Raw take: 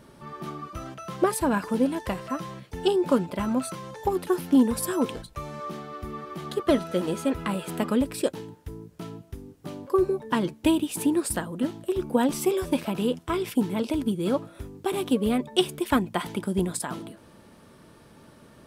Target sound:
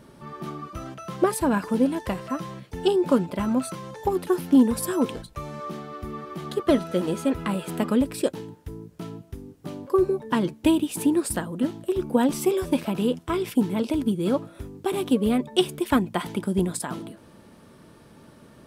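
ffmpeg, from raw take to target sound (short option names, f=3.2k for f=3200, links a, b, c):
-af "equalizer=f=210:w=0.54:g=2.5"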